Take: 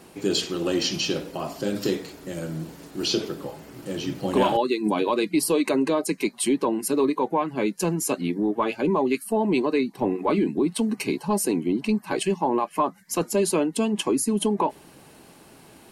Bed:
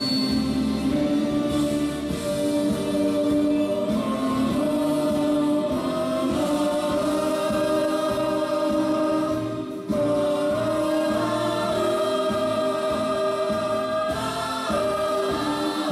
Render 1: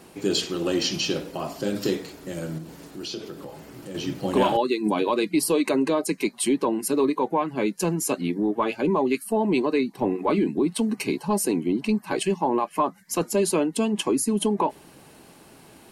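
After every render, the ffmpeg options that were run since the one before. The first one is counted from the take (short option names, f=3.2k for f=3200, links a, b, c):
-filter_complex "[0:a]asettb=1/sr,asplit=3[a][b][c];[a]atrim=end=2.584[d];[b]atrim=start=2.58:end=3.95,asetpts=PTS-STARTPTS,afade=t=in:d=0.004:c=qsin,afade=t=out:st=1.366:d=0.004:c=qsin,acompressor=threshold=-37dB:ratio=2:attack=3.2:release=140:knee=1:detection=peak[e];[c]atrim=start=3.946[f];[d][e]acrossfade=d=0.004:c1=hsin:c2=qsin[g];[g][f]acrossfade=d=0.004:c1=qsin:c2=hsin"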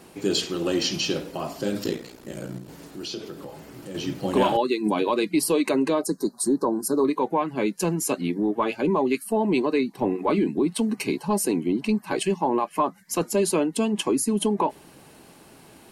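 -filter_complex "[0:a]asettb=1/sr,asplit=3[a][b][c];[a]atrim=end=1.834[d];[b]atrim=start=1.83:end=2.69,asetpts=PTS-STARTPTS,afade=t=in:d=0.004:c=qsin,afade=t=out:st=0.856:d=0.004:c=qsin,aeval=exprs='val(0)*sin(2*PI*29*n/s)':c=same[e];[c]atrim=start=2.686[f];[d][e]acrossfade=d=0.004:c1=hsin:c2=qsin[g];[g][f]acrossfade=d=0.004:c1=qsin:c2=hsin,asettb=1/sr,asplit=3[h][i][j];[h]atrim=end=6.034[k];[i]atrim=start=6.03:end=7.05,asetpts=PTS-STARTPTS,afade=t=in:d=0.004:c=qsin,afade=t=out:st=1.016:d=0.004:c=qsin,asuperstop=centerf=2600:order=8:qfactor=0.95[l];[j]atrim=start=7.046[m];[k][l]acrossfade=d=0.004:c1=hsin:c2=qsin[n];[n][m]acrossfade=d=0.004:c1=qsin:c2=hsin"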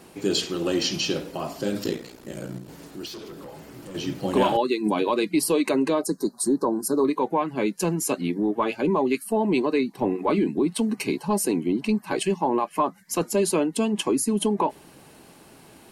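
-filter_complex "[0:a]asettb=1/sr,asplit=3[a][b][c];[a]atrim=end=3.064[d];[b]atrim=start=3.06:end=3.95,asetpts=PTS-STARTPTS,afade=t=in:d=0.004:c=qsin,afade=t=out:st=0.886:d=0.004:c=qsin,asoftclip=type=hard:threshold=-35.5dB[e];[c]atrim=start=3.946[f];[d][e]acrossfade=d=0.004:c1=hsin:c2=qsin[g];[g][f]acrossfade=d=0.004:c1=qsin:c2=hsin"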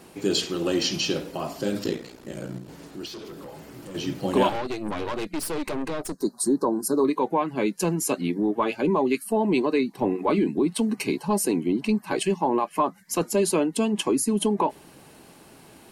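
-filter_complex "[0:a]asettb=1/sr,asplit=3[a][b][c];[a]atrim=end=1.794[d];[b]atrim=start=1.79:end=3.25,asetpts=PTS-STARTPTS,afade=t=in:d=0.004:c=qsin,afade=t=out:st=1.456:d=0.004:c=qsin,highshelf=f=10k:g=-7[e];[c]atrim=start=3.246[f];[d][e]acrossfade=d=0.004:c1=hsin:c2=qsin[g];[g][f]acrossfade=d=0.004:c1=qsin:c2=hsin,asettb=1/sr,asplit=3[h][i][j];[h]atrim=end=4.494[k];[i]atrim=start=4.49:end=6.22,asetpts=PTS-STARTPTS,afade=t=in:d=0.004:c=qsin,afade=t=out:st=1.726:d=0.004:c=qsin,aeval=exprs='(tanh(20*val(0)+0.75)-tanh(0.75))/20':c=same[l];[j]atrim=start=6.216[m];[k][l]acrossfade=d=0.004:c1=hsin:c2=qsin[n];[n][m]acrossfade=d=0.004:c1=qsin:c2=hsin"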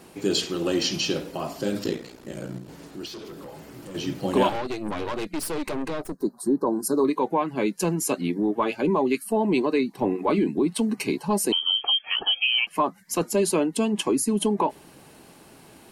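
-filter_complex "[0:a]asettb=1/sr,asplit=3[a][b][c];[a]atrim=end=6.044[d];[b]atrim=start=6.04:end=6.67,asetpts=PTS-STARTPTS,afade=t=in:d=0.004:c=qsin,afade=t=out:st=0.626:d=0.004:c=qsin,equalizer=f=6.1k:w=0.46:g=-12.5[e];[c]atrim=start=6.666[f];[d][e]acrossfade=d=0.004:c1=hsin:c2=qsin[g];[g][f]acrossfade=d=0.004:c1=qsin:c2=hsin,asettb=1/sr,asplit=3[h][i][j];[h]atrim=end=11.524[k];[i]atrim=start=11.52:end=12.67,asetpts=PTS-STARTPTS,afade=t=in:d=0.004:c=qsin,afade=t=out:st=1.146:d=0.004:c=qsin,lowpass=f=2.9k:t=q:w=0.5098,lowpass=f=2.9k:t=q:w=0.6013,lowpass=f=2.9k:t=q:w=0.9,lowpass=f=2.9k:t=q:w=2.563,afreqshift=-3400[l];[j]atrim=start=12.666[m];[k][l]acrossfade=d=0.004:c1=hsin:c2=qsin[n];[n][m]acrossfade=d=0.004:c1=qsin:c2=hsin"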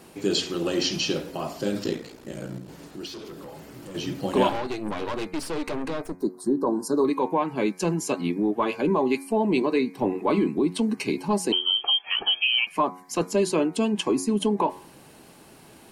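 -filter_complex "[0:a]bandreject=f=91.36:t=h:w=4,bandreject=f=182.72:t=h:w=4,bandreject=f=274.08:t=h:w=4,bandreject=f=365.44:t=h:w=4,bandreject=f=456.8:t=h:w=4,bandreject=f=548.16:t=h:w=4,bandreject=f=639.52:t=h:w=4,bandreject=f=730.88:t=h:w=4,bandreject=f=822.24:t=h:w=4,bandreject=f=913.6:t=h:w=4,bandreject=f=1.00496k:t=h:w=4,bandreject=f=1.09632k:t=h:w=4,bandreject=f=1.18768k:t=h:w=4,bandreject=f=1.27904k:t=h:w=4,bandreject=f=1.3704k:t=h:w=4,bandreject=f=1.46176k:t=h:w=4,bandreject=f=1.55312k:t=h:w=4,bandreject=f=1.64448k:t=h:w=4,bandreject=f=1.73584k:t=h:w=4,bandreject=f=1.8272k:t=h:w=4,bandreject=f=1.91856k:t=h:w=4,bandreject=f=2.00992k:t=h:w=4,bandreject=f=2.10128k:t=h:w=4,bandreject=f=2.19264k:t=h:w=4,bandreject=f=2.284k:t=h:w=4,bandreject=f=2.37536k:t=h:w=4,bandreject=f=2.46672k:t=h:w=4,acrossover=split=8300[a][b];[b]acompressor=threshold=-51dB:ratio=4:attack=1:release=60[c];[a][c]amix=inputs=2:normalize=0"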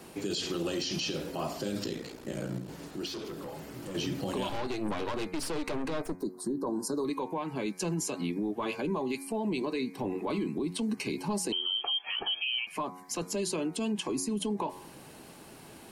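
-filter_complex "[0:a]acrossover=split=140|3000[a][b][c];[b]acompressor=threshold=-28dB:ratio=6[d];[a][d][c]amix=inputs=3:normalize=0,alimiter=limit=-24dB:level=0:latency=1:release=53"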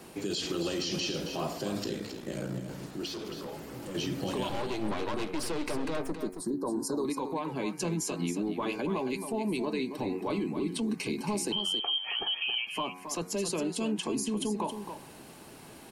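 -af "aecho=1:1:272:0.376"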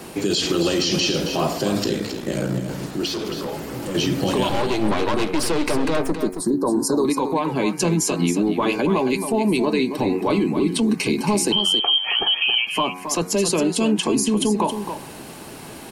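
-af "volume=12dB"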